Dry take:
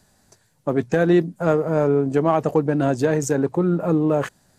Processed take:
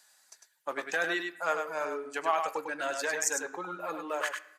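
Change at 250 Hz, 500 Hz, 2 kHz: −23.5, −15.0, +0.5 decibels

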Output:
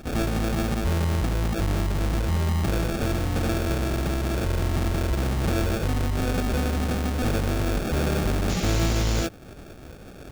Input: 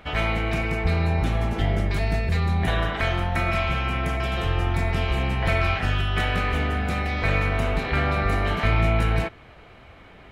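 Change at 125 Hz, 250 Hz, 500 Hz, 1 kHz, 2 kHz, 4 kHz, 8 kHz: −1.0, +3.0, −1.0, −5.0, −7.5, −2.0, +11.0 decibels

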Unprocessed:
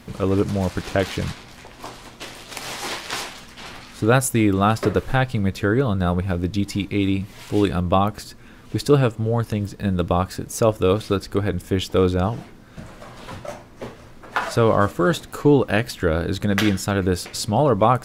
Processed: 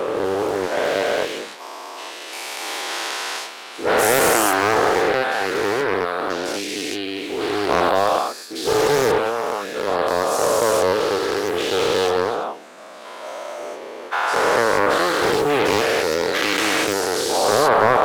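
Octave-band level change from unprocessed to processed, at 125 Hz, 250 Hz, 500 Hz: −14.5, −5.5, +3.5 decibels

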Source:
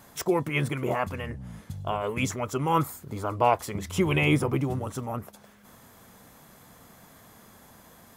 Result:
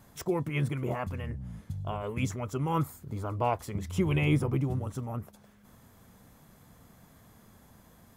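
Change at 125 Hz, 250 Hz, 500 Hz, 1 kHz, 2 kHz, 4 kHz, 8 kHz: 0.0, −3.0, −6.0, −7.5, −8.0, −8.0, −8.0 decibels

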